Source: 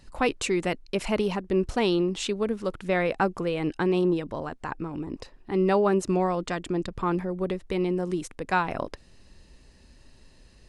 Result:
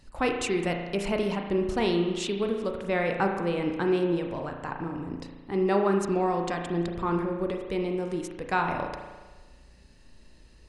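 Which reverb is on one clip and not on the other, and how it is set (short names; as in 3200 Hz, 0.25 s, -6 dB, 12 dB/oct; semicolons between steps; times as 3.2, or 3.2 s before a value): spring tank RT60 1.3 s, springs 35 ms, chirp 50 ms, DRR 3 dB; gain -2.5 dB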